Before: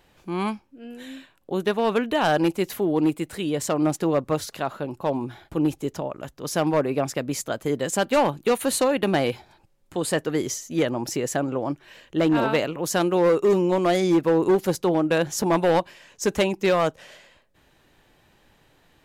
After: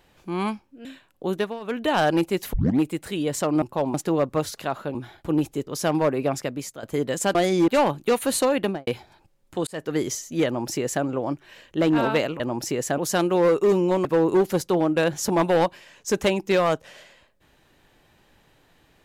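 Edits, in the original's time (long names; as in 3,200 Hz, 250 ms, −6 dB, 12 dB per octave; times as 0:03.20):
0:00.85–0:01.12: remove
0:01.62–0:02.12: duck −17.5 dB, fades 0.25 s
0:02.80: tape start 0.27 s
0:04.90–0:05.22: move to 0:03.89
0:05.94–0:06.39: remove
0:07.09–0:07.55: fade out, to −12.5 dB
0:08.99–0:09.26: fade out and dull
0:10.06–0:10.33: fade in
0:10.85–0:11.43: duplicate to 0:12.79
0:13.86–0:14.19: move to 0:08.07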